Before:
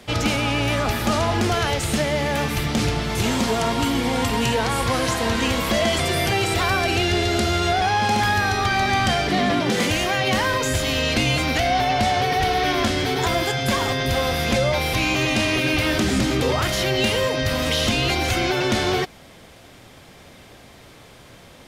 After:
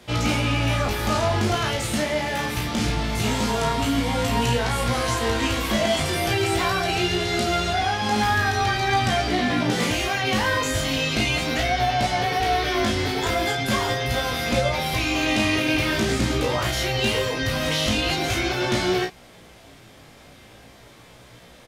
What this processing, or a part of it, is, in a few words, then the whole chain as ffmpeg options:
double-tracked vocal: -filter_complex "[0:a]asplit=2[s0][s1];[s1]adelay=33,volume=0.562[s2];[s0][s2]amix=inputs=2:normalize=0,flanger=delay=16.5:depth=2.8:speed=0.42"

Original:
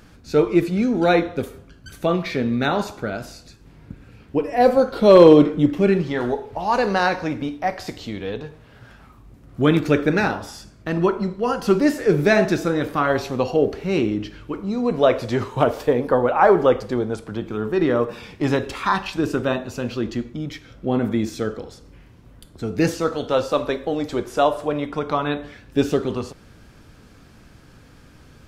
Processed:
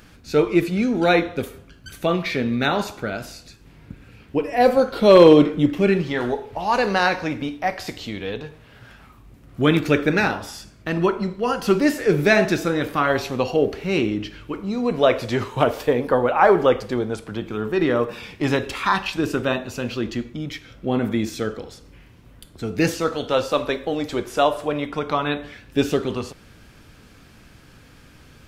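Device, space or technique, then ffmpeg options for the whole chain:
presence and air boost: -af "equalizer=f=2600:t=o:w=1.4:g=5,highshelf=f=9500:g=7,volume=0.891"

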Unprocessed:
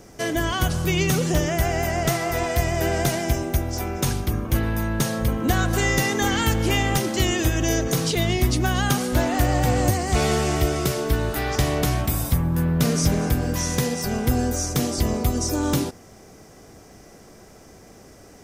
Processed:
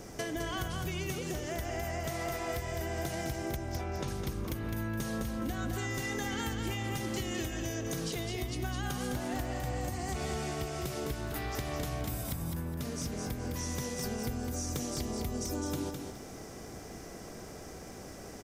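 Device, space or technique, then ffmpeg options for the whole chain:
serial compression, peaks first: -filter_complex "[0:a]asettb=1/sr,asplit=3[s0][s1][s2];[s0]atrim=end=3.564[s3];[s1]atrim=start=3.56:end=4.08,asetpts=PTS-STARTPTS,afade=t=in:d=0.004:c=qsin,afade=t=out:st=0.516:d=0.004:c=qsin,lowpass=5100[s4];[s2]atrim=start=4.076[s5];[s3][s4]acrossfade=d=0.004:c1=hsin:c2=qsin[s6];[s6][s5]acrossfade=d=0.004:c1=qsin:c2=hsin,acompressor=threshold=0.0398:ratio=6,acompressor=threshold=0.0158:ratio=2.5,aecho=1:1:209|418|627|836:0.562|0.157|0.0441|0.0123"

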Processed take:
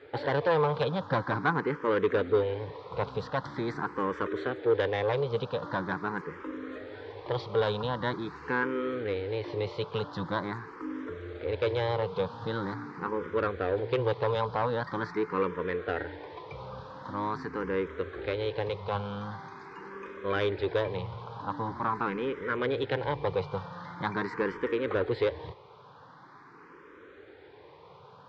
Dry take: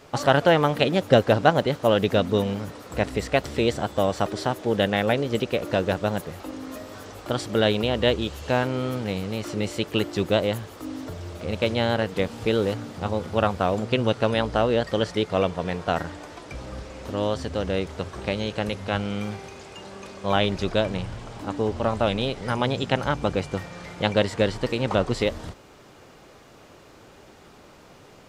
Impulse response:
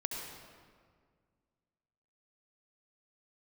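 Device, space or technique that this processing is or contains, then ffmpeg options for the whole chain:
barber-pole phaser into a guitar amplifier: -filter_complex "[0:a]asplit=2[s0][s1];[s1]afreqshift=0.44[s2];[s0][s2]amix=inputs=2:normalize=1,asoftclip=type=tanh:threshold=0.0944,highpass=110,equalizer=f=220:t=q:w=4:g=-10,equalizer=f=450:t=q:w=4:g=6,equalizer=f=650:t=q:w=4:g=-10,equalizer=f=1000:t=q:w=4:g=8,equalizer=f=1600:t=q:w=4:g=4,equalizer=f=2800:t=q:w=4:g=-9,lowpass=f=3700:w=0.5412,lowpass=f=3700:w=1.3066"

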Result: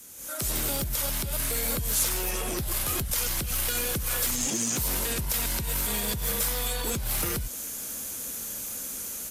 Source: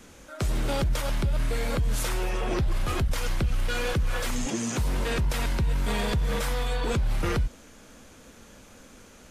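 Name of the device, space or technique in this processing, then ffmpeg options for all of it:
FM broadcast chain: -filter_complex "[0:a]highpass=f=52:p=1,dynaudnorm=f=160:g=3:m=4.47,acrossover=split=340|6700[s0][s1][s2];[s0]acompressor=threshold=0.112:ratio=4[s3];[s1]acompressor=threshold=0.0631:ratio=4[s4];[s2]acompressor=threshold=0.00631:ratio=4[s5];[s3][s4][s5]amix=inputs=3:normalize=0,aemphasis=mode=production:type=50fm,alimiter=limit=0.237:level=0:latency=1:release=105,asoftclip=type=hard:threshold=0.168,lowpass=f=15000:w=0.5412,lowpass=f=15000:w=1.3066,aemphasis=mode=production:type=50fm,volume=0.355"

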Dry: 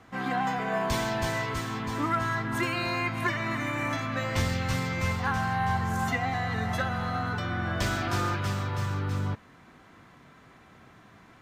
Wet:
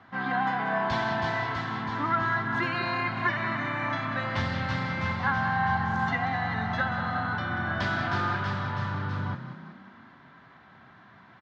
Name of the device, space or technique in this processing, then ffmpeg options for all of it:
frequency-shifting delay pedal into a guitar cabinet: -filter_complex "[0:a]asplit=7[s0][s1][s2][s3][s4][s5][s6];[s1]adelay=186,afreqshift=32,volume=0.299[s7];[s2]adelay=372,afreqshift=64,volume=0.153[s8];[s3]adelay=558,afreqshift=96,volume=0.0776[s9];[s4]adelay=744,afreqshift=128,volume=0.0398[s10];[s5]adelay=930,afreqshift=160,volume=0.0202[s11];[s6]adelay=1116,afreqshift=192,volume=0.0104[s12];[s0][s7][s8][s9][s10][s11][s12]amix=inputs=7:normalize=0,highpass=98,equalizer=f=310:t=q:w=4:g=-4,equalizer=f=460:t=q:w=4:g=-8,equalizer=f=920:t=q:w=4:g=4,equalizer=f=1600:t=q:w=4:g=5,equalizer=f=2500:t=q:w=4:g=-5,lowpass=f=4300:w=0.5412,lowpass=f=4300:w=1.3066"

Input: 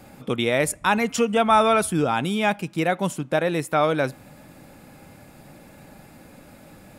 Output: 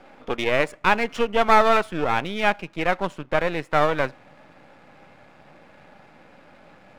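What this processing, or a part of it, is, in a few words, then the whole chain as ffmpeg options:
crystal radio: -af "asubboost=boost=6:cutoff=120,highpass=360,lowpass=2600,aeval=exprs='if(lt(val(0),0),0.251*val(0),val(0))':c=same,volume=1.78"

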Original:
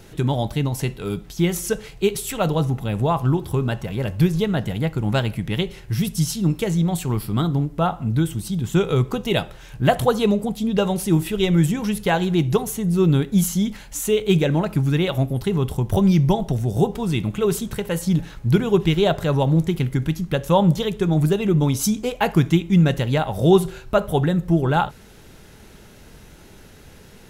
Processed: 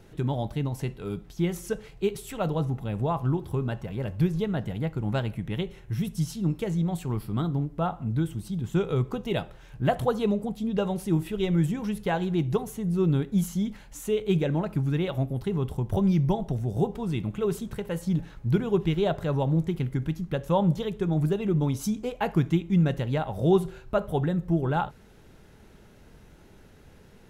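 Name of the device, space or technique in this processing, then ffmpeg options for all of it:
behind a face mask: -filter_complex "[0:a]asettb=1/sr,asplit=3[s0][s1][s2];[s0]atrim=end=5.324[s3];[s1]atrim=start=5.32:end=6.13,asetpts=PTS-STARTPTS,afade=t=in:d=0.004:c=qsin,afade=t=out:st=0.806:d=0.004:c=qsin,bandreject=f=4700:w=6.4[s4];[s2]atrim=start=6.126[s5];[s3][s4]acrossfade=d=0.004:c1=hsin:c2=qsin[s6];[s6][s5]acrossfade=d=0.004:c1=qsin:c2=hsin,highshelf=f=2500:g=-8,volume=0.473"

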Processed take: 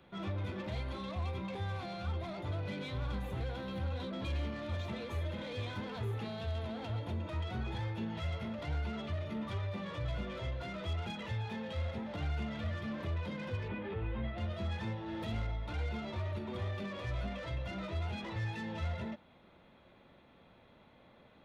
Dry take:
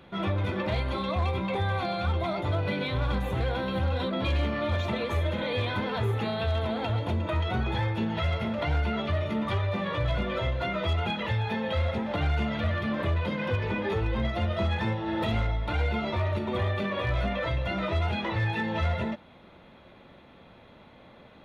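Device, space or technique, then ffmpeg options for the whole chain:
one-band saturation: -filter_complex "[0:a]acrossover=split=330|3800[s0][s1][s2];[s1]asoftclip=type=tanh:threshold=0.0224[s3];[s0][s3][s2]amix=inputs=3:normalize=0,asettb=1/sr,asplit=3[s4][s5][s6];[s4]atrim=end=13.684[s7];[s5]atrim=start=13.68:end=14.38,asetpts=PTS-STARTPTS,afade=t=in:d=0.004:c=qsin,afade=t=out:st=0.696:d=0.004:c=qsin,lowpass=f=3200:w=0.5412,lowpass=f=3200:w=1.3066[s8];[s6]atrim=start=14.376[s9];[s7][s8]acrossfade=d=0.004:c1=hsin:c2=qsin[s10];[s10][s9]acrossfade=d=0.004:c1=qsin:c2=hsin,volume=0.355"

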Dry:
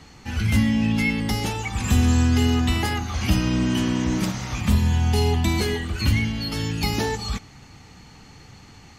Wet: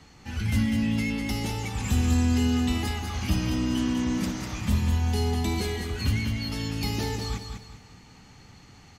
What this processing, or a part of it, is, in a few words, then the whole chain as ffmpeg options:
one-band saturation: -filter_complex "[0:a]acrossover=split=450|3300[s0][s1][s2];[s1]asoftclip=type=tanh:threshold=0.0355[s3];[s0][s3][s2]amix=inputs=3:normalize=0,aecho=1:1:198|396|594|792:0.501|0.17|0.0579|0.0197,volume=0.531"

